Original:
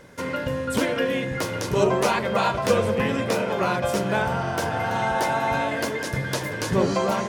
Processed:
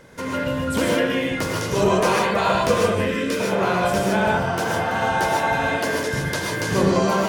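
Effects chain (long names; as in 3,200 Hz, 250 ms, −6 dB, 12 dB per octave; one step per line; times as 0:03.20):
0:02.96–0:03.40: phaser with its sweep stopped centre 320 Hz, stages 4
0:04.43–0:04.89: high-pass filter 110 Hz
reverb whose tail is shaped and stops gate 170 ms rising, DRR −1 dB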